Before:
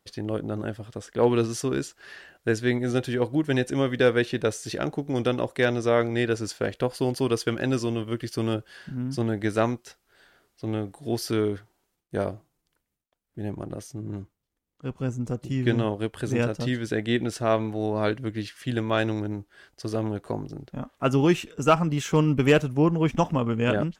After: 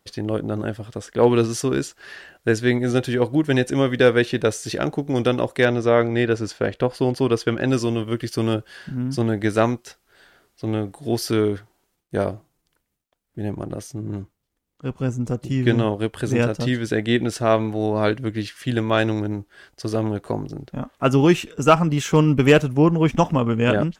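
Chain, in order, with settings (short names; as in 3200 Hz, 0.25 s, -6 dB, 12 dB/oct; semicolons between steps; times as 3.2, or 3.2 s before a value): 5.65–7.68 high shelf 5600 Hz -11 dB; gain +5 dB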